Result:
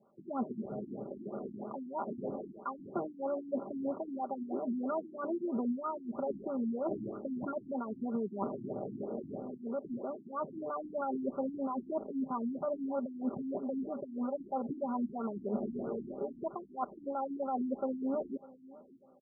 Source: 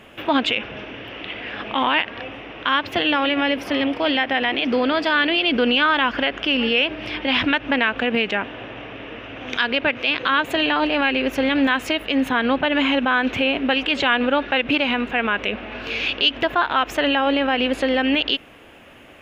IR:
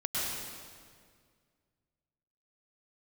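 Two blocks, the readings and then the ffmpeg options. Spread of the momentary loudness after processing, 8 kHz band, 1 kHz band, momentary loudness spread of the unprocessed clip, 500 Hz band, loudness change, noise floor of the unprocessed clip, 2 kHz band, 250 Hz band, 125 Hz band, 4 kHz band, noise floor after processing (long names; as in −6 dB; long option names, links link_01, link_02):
6 LU, can't be measured, −17.0 dB, 12 LU, −13.0 dB, −18.0 dB, −45 dBFS, below −40 dB, −13.5 dB, −10.0 dB, below −40 dB, −55 dBFS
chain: -af "afwtdn=0.0355,highpass=frequency=100:width=0.5412,highpass=frequency=100:width=1.3066,dynaudnorm=framelen=320:gausssize=7:maxgain=11.5dB,lowpass=frequency=1900:width=0.5412,lowpass=frequency=1900:width=1.3066,aecho=1:1:5.1:0.79,areverse,acompressor=threshold=-25dB:ratio=10,areverse,aecho=1:1:600|1200|1800:0.0944|0.0321|0.0109,afftfilt=real='re*lt(b*sr/1024,330*pow(1500/330,0.5+0.5*sin(2*PI*3.1*pts/sr)))':imag='im*lt(b*sr/1024,330*pow(1500/330,0.5+0.5*sin(2*PI*3.1*pts/sr)))':win_size=1024:overlap=0.75,volume=-5.5dB"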